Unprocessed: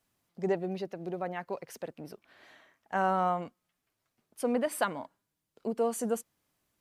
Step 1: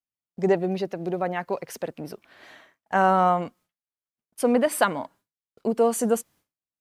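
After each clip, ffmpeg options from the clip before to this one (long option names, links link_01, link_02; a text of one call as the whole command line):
ffmpeg -i in.wav -af "agate=range=-33dB:threshold=-57dB:ratio=3:detection=peak,volume=8.5dB" out.wav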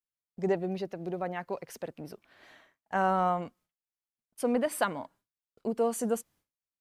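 ffmpeg -i in.wav -af "lowshelf=frequency=65:gain=9.5,volume=-7.5dB" out.wav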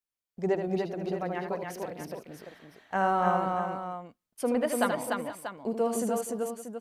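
ffmpeg -i in.wav -af "aecho=1:1:77|294|474|637:0.422|0.668|0.15|0.316" out.wav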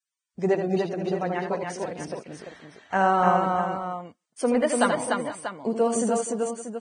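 ffmpeg -i in.wav -af "volume=5dB" -ar 22050 -c:a libvorbis -b:a 16k out.ogg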